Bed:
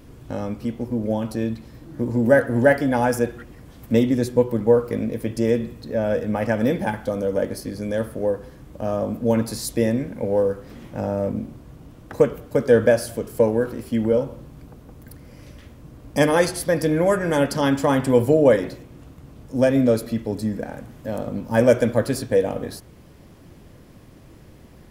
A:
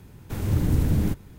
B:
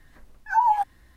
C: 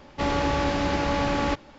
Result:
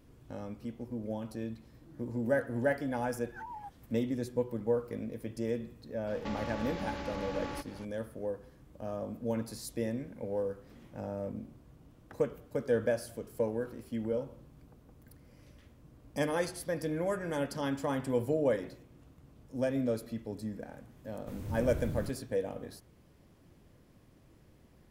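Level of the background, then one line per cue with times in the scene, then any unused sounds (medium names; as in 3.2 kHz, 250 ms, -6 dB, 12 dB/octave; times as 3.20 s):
bed -14 dB
2.86 s: add B -15 dB + compression, threshold -27 dBFS
6.07 s: add C -1.5 dB + compression 5:1, threshold -36 dBFS
20.97 s: add A -15.5 dB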